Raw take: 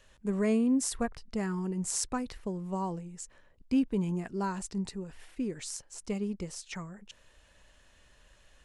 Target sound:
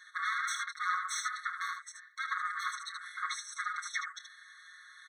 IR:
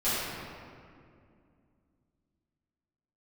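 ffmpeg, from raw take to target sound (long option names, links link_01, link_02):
-filter_complex "[0:a]highpass=49,afwtdn=0.0141,bandreject=frequency=50:width_type=h:width=6,bandreject=frequency=100:width_type=h:width=6,bandreject=frequency=150:width_type=h:width=6,bandreject=frequency=200:width_type=h:width=6,bandreject=frequency=250:width_type=h:width=6,bandreject=frequency=300:width_type=h:width=6,bandreject=frequency=350:width_type=h:width=6,bandreject=frequency=400:width_type=h:width=6,bandreject=frequency=450:width_type=h:width=6,asplit=2[link_01][link_02];[link_02]highpass=frequency=720:poles=1,volume=32dB,asoftclip=type=tanh:threshold=-17dB[link_03];[link_01][link_03]amix=inputs=2:normalize=0,lowpass=frequency=2500:poles=1,volume=-6dB,lowshelf=frequency=150:gain=9.5,acrossover=split=560|5600[link_04][link_05][link_06];[link_05]alimiter=level_in=2.5dB:limit=-24dB:level=0:latency=1:release=71,volume=-2.5dB[link_07];[link_06]acompressor=threshold=-55dB:ratio=6[link_08];[link_04][link_07][link_08]amix=inputs=3:normalize=0,atempo=1.7,aecho=1:1:5.6:0.97,aeval=exprs='0.422*(cos(1*acos(clip(val(0)/0.422,-1,1)))-cos(1*PI/2))+0.0237*(cos(3*acos(clip(val(0)/0.422,-1,1)))-cos(3*PI/2))':channel_layout=same,aecho=1:1:28|77:0.211|0.473,afftfilt=real='re*eq(mod(floor(b*sr/1024/1100),2),1)':imag='im*eq(mod(floor(b*sr/1024/1100),2),1)':win_size=1024:overlap=0.75,volume=6dB"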